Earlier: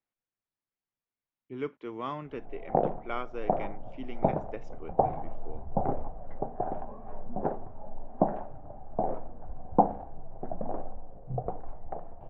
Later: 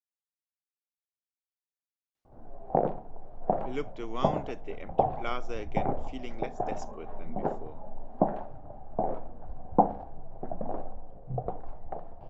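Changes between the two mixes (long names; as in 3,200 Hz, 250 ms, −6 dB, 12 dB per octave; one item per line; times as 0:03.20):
speech: entry +2.15 s
master: remove low-pass filter 2,400 Hz 12 dB per octave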